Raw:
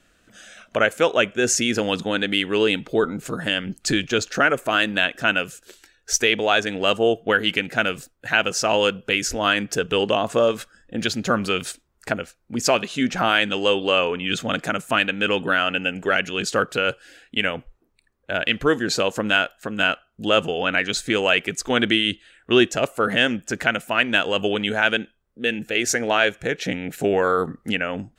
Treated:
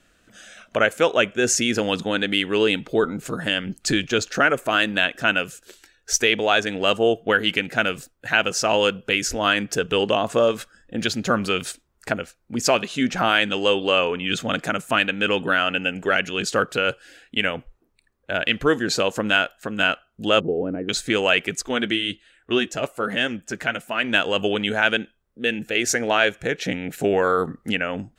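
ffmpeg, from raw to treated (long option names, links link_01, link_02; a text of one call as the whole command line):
ffmpeg -i in.wav -filter_complex "[0:a]asettb=1/sr,asplit=3[link_01][link_02][link_03];[link_01]atrim=end=20.404[link_04];[link_02]atrim=start=20.4:end=20.89,asetpts=PTS-STARTPTS,afade=type=in:duration=0.004:curve=qsin,afade=type=out:start_time=0.486:duration=0.004:curve=qsin,lowpass=frequency=380:width_type=q:width=1.9[link_05];[link_03]atrim=start=20.886[link_06];[link_04][link_05]acrossfade=duration=0.004:curve1=hsin:curve2=qsin[link_07];[link_07][link_06]acrossfade=duration=0.004:curve1=qsin:curve2=hsin,asettb=1/sr,asplit=3[link_08][link_09][link_10];[link_08]atrim=end=21.624[link_11];[link_09]atrim=start=21.62:end=24.04,asetpts=PTS-STARTPTS,afade=type=in:duration=0.004:curve=qsin,afade=type=out:start_time=2.416:duration=0.004:curve=qsin,flanger=delay=2.1:depth=5.3:regen=-50:speed=1.2:shape=triangular[link_12];[link_10]atrim=start=24.036[link_13];[link_11][link_12]acrossfade=duration=0.004:curve1=hsin:curve2=qsin[link_14];[link_14][link_13]acrossfade=duration=0.004:curve1=qsin:curve2=hsin" out.wav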